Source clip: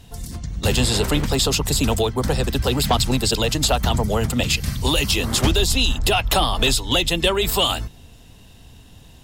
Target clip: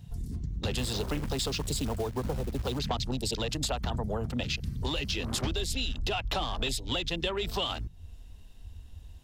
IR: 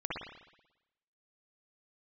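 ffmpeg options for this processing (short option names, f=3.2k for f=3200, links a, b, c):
-filter_complex "[0:a]afwtdn=0.0355,acompressor=threshold=-37dB:ratio=3,asettb=1/sr,asplit=3[a][b][c];[a]atrim=end=0.784[d];[b]atrim=start=0.78:end=2.79,asetpts=PTS-STARTPTS,afade=t=in:d=0.004:c=qsin,afade=t=out:st=2.006:d=0.004:c=qsin,acrusher=bits=4:mode=log:mix=0:aa=0.000001[e];[c]atrim=start=2.786[f];[d][e]acrossfade=d=0.004:c1=hsin:c2=qsin[g];[g][f]acrossfade=d=0.004:c1=qsin:c2=hsin,volume=3dB"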